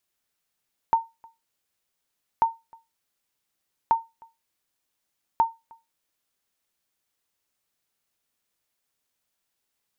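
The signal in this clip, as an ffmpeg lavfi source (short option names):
-f lavfi -i "aevalsrc='0.266*(sin(2*PI*911*mod(t,1.49))*exp(-6.91*mod(t,1.49)/0.22)+0.0376*sin(2*PI*911*max(mod(t,1.49)-0.31,0))*exp(-6.91*max(mod(t,1.49)-0.31,0)/0.22))':d=5.96:s=44100"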